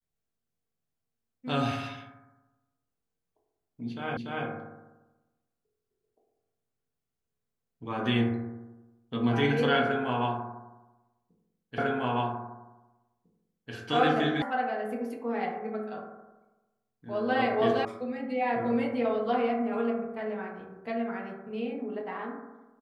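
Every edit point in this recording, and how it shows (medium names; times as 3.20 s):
4.17 s: repeat of the last 0.29 s
11.78 s: repeat of the last 1.95 s
14.42 s: sound stops dead
17.85 s: sound stops dead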